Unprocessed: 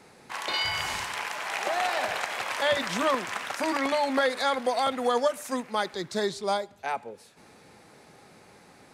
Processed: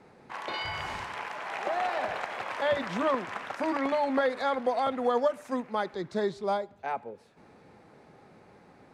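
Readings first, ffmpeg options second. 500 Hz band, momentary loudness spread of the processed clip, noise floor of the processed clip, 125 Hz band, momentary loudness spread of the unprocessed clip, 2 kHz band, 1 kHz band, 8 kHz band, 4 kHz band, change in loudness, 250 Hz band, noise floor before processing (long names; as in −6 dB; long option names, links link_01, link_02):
−1.0 dB, 9 LU, −57 dBFS, 0.0 dB, 8 LU, −5.0 dB, −2.0 dB, below −10 dB, −9.5 dB, −2.5 dB, 0.0 dB, −55 dBFS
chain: -af "lowpass=frequency=1200:poles=1"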